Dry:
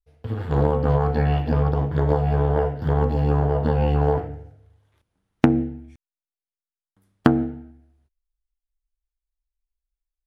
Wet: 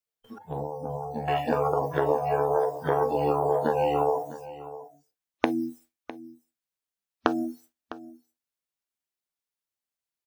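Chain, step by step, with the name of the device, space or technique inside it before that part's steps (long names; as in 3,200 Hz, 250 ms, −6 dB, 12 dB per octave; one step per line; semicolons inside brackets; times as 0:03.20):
baby monitor (band-pass filter 390–3,400 Hz; downward compressor 10 to 1, threshold −26 dBFS, peak gain reduction 11.5 dB; white noise bed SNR 19 dB; noise gate −48 dBFS, range −21 dB)
noise reduction from a noise print of the clip's start 24 dB
0:00.38–0:01.28: drawn EQ curve 230 Hz 0 dB, 350 Hz −13 dB, 850 Hz −7 dB, 1,300 Hz −27 dB, 5,900 Hz −9 dB
single-tap delay 655 ms −16 dB
level +6.5 dB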